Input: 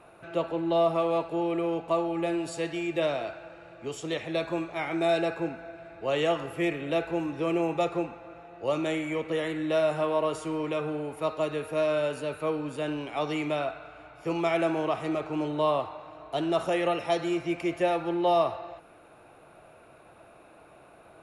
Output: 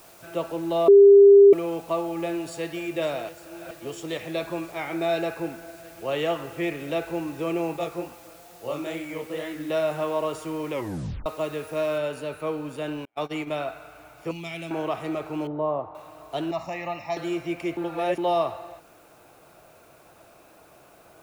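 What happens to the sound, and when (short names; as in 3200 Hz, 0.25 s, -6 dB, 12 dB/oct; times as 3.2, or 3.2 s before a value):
0.88–1.53 bleep 400 Hz -8 dBFS
2.2–2.77 echo throw 0.54 s, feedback 85%, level -13.5 dB
3.29–3.71 reverse
4.66–6.68 LPF 6900 Hz
7.76–9.7 chorus 2.3 Hz, delay 15.5 ms, depth 7.3 ms
10.71 tape stop 0.55 s
11.98 noise floor step -53 dB -62 dB
13.05–13.66 gate -32 dBFS, range -39 dB
14.31–14.71 band shelf 760 Hz -14.5 dB 2.7 oct
15.47–15.95 LPF 1000 Hz
16.51–17.17 fixed phaser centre 2200 Hz, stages 8
17.77–18.18 reverse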